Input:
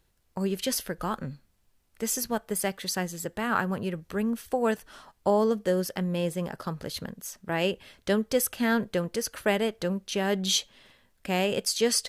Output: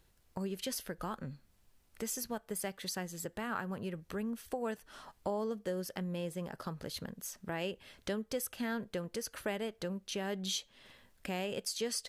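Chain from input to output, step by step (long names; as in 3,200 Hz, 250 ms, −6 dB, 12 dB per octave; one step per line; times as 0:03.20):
downward compressor 2 to 1, threshold −45 dBFS, peak gain reduction 14 dB
level +1 dB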